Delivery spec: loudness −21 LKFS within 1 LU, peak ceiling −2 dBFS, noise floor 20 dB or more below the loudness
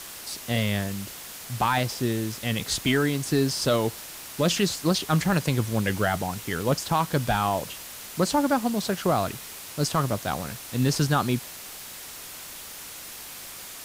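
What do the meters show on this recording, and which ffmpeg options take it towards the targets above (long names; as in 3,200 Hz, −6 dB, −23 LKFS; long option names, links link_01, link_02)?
background noise floor −41 dBFS; target noise floor −46 dBFS; integrated loudness −26.0 LKFS; sample peak −12.0 dBFS; target loudness −21.0 LKFS
→ -af "afftdn=noise_reduction=6:noise_floor=-41"
-af "volume=5dB"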